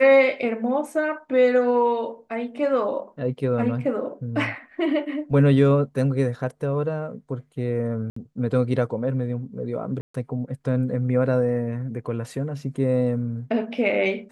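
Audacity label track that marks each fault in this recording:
8.100000	8.160000	dropout 64 ms
10.010000	10.140000	dropout 134 ms

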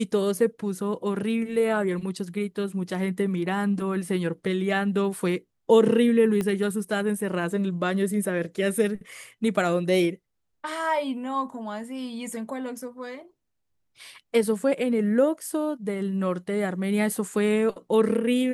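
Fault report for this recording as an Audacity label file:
6.410000	6.410000	pop -16 dBFS

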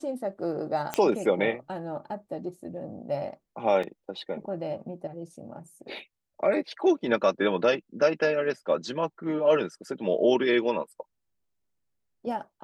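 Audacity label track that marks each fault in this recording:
0.940000	0.940000	pop -12 dBFS
3.830000	3.830000	dropout 4.2 ms

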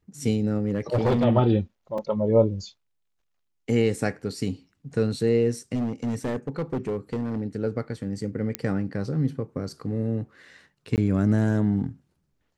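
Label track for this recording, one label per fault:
0.670000	1.250000	clipped -17.5 dBFS
1.980000	1.980000	dropout 3.6 ms
5.750000	7.420000	clipped -23 dBFS
8.550000	8.550000	pop -9 dBFS
10.960000	10.980000	dropout 18 ms

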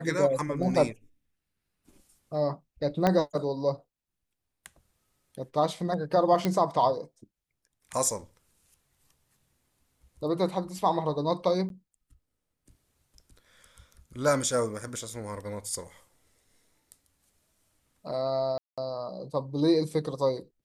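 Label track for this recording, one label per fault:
3.070000	3.070000	pop -11 dBFS
6.450000	6.450000	pop -13 dBFS
11.690000	11.700000	dropout 12 ms
18.580000	18.780000	dropout 196 ms

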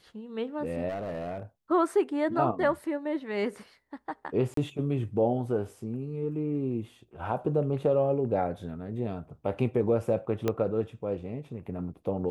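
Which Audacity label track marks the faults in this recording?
0.880000	1.430000	clipped -30.5 dBFS
4.540000	4.570000	dropout 33 ms
10.480000	10.480000	pop -14 dBFS

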